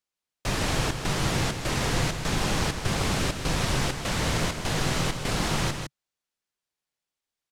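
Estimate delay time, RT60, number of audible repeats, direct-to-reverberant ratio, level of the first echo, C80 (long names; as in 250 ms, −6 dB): 158 ms, no reverb audible, 1, no reverb audible, −7.0 dB, no reverb audible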